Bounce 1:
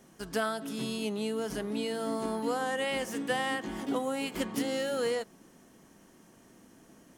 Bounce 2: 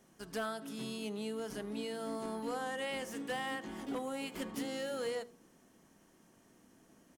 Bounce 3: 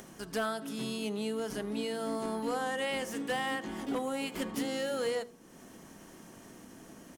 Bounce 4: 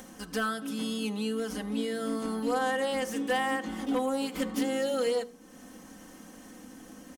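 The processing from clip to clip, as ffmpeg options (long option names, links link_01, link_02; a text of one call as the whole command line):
ffmpeg -i in.wav -af "bandreject=frequency=47.94:width_type=h:width=4,bandreject=frequency=95.88:width_type=h:width=4,bandreject=frequency=143.82:width_type=h:width=4,bandreject=frequency=191.76:width_type=h:width=4,bandreject=frequency=239.7:width_type=h:width=4,bandreject=frequency=287.64:width_type=h:width=4,bandreject=frequency=335.58:width_type=h:width=4,bandreject=frequency=383.52:width_type=h:width=4,bandreject=frequency=431.46:width_type=h:width=4,bandreject=frequency=479.4:width_type=h:width=4,bandreject=frequency=527.34:width_type=h:width=4,asoftclip=type=hard:threshold=-25dB,aecho=1:1:78:0.075,volume=-6.5dB" out.wav
ffmpeg -i in.wav -af "acompressor=mode=upward:threshold=-47dB:ratio=2.5,volume=5dB" out.wav
ffmpeg -i in.wav -af "aecho=1:1:3.9:0.89" out.wav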